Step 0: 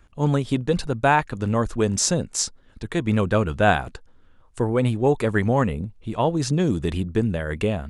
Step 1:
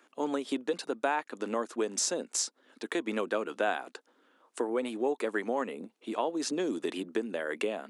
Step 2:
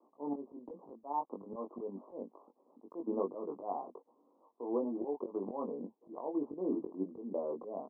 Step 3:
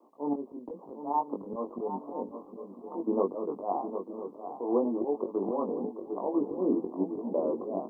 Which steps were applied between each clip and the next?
steep high-pass 260 Hz 36 dB/octave; compression 2.5:1, threshold -31 dBFS, peak gain reduction 12.5 dB
steep low-pass 1.1 kHz 96 dB/octave; slow attack 168 ms; doubling 21 ms -3 dB; trim -2.5 dB
shuffle delay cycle 1010 ms, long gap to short 3:1, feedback 38%, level -10 dB; trim +7 dB

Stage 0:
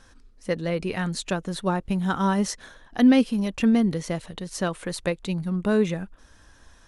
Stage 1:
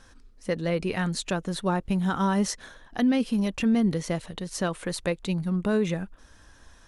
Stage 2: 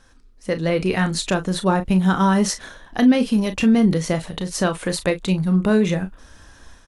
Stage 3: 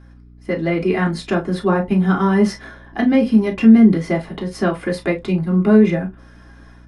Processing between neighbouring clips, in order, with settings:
peak limiter -16 dBFS, peak gain reduction 8 dB
level rider gain up to 8 dB; on a send: early reflections 32 ms -11 dB, 43 ms -15 dB; on the sum: trim -1 dB
reverberation RT60 0.15 s, pre-delay 3 ms, DRR -1.5 dB; hum 60 Hz, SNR 27 dB; trim -11 dB

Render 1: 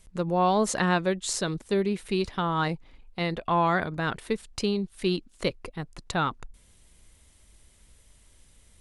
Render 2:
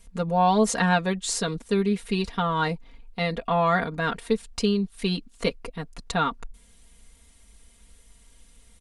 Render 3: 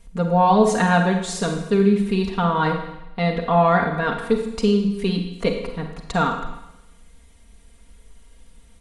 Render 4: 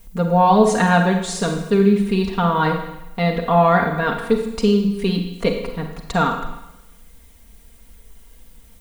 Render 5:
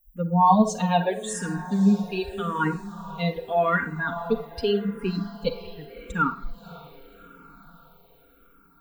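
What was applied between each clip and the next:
comb 4.3 ms, depth 85%
treble shelf 2.6 kHz -9 dB; reverberation RT60 0.90 s, pre-delay 35 ms, DRR 4.5 dB; trim +4.5 dB
added noise violet -58 dBFS; trim +2 dB
expander on every frequency bin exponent 2; echo that smears into a reverb 588 ms, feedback 52%, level -16 dB; barber-pole phaser -0.84 Hz; trim +1.5 dB

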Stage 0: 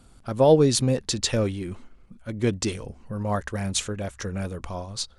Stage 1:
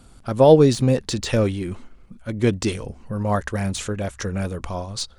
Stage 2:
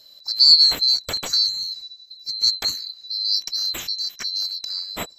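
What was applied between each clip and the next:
de-esser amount 55%; trim +4.5 dB
split-band scrambler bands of 4 kHz; bass shelf 120 Hz +4.5 dB; trim -1 dB

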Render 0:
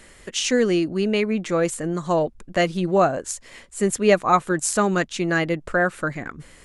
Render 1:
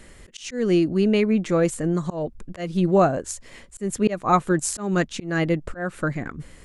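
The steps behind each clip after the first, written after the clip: bass shelf 390 Hz +8 dB; slow attack 229 ms; trim -2.5 dB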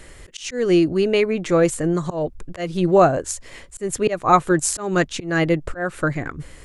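peaking EQ 210 Hz -11.5 dB 0.37 oct; trim +4.5 dB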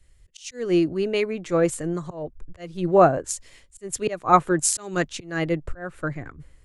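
three bands expanded up and down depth 70%; trim -5.5 dB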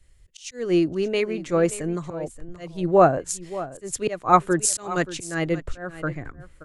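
delay 578 ms -15.5 dB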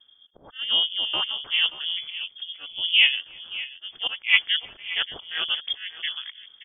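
ring modulator 140 Hz; echo from a far wall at 55 m, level -30 dB; frequency inversion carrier 3.4 kHz

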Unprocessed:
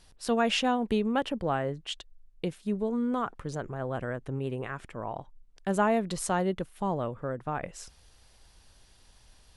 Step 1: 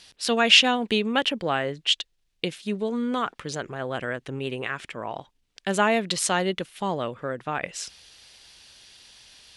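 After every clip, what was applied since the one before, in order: frequency weighting D; trim +3.5 dB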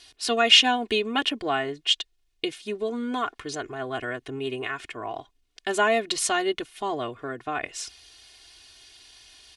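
comb 2.8 ms, depth 89%; trim -3 dB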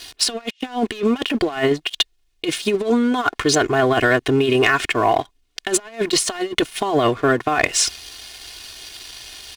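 compressor with a negative ratio -31 dBFS, ratio -0.5; waveshaping leveller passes 2; trim +5 dB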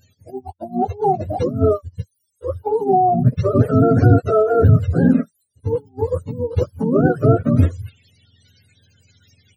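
spectrum inverted on a logarithmic axis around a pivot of 420 Hz; spectral noise reduction 16 dB; trim +3.5 dB

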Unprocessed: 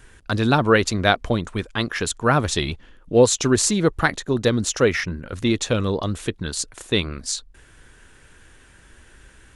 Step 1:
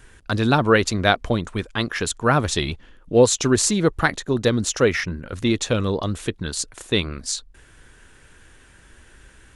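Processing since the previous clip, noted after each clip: no audible change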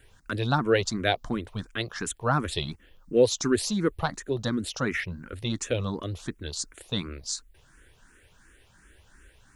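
word length cut 12-bit, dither triangular; barber-pole phaser +2.8 Hz; trim -4.5 dB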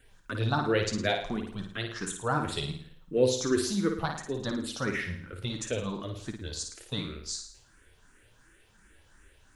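flange 0.69 Hz, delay 3.8 ms, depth 8.1 ms, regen +48%; flutter echo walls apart 9.4 m, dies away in 0.56 s

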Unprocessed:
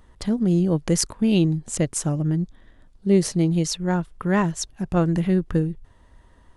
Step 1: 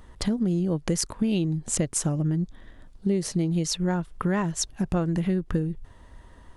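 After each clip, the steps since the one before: compression 6:1, threshold -26 dBFS, peak gain reduction 13 dB; trim +4 dB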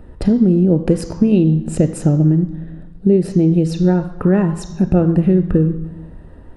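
reverberation RT60 1.1 s, pre-delay 3 ms, DRR 10 dB; trim -3 dB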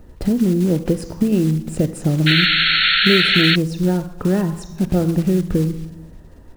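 block-companded coder 5-bit; painted sound noise, 2.26–3.56 s, 1.3–4.4 kHz -12 dBFS; trim -4 dB

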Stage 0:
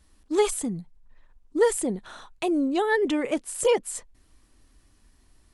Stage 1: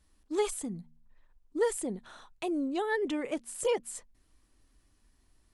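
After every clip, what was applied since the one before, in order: de-hum 77.67 Hz, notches 3; trim -7.5 dB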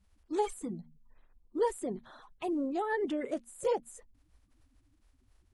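coarse spectral quantiser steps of 30 dB; treble shelf 2.6 kHz -9.5 dB

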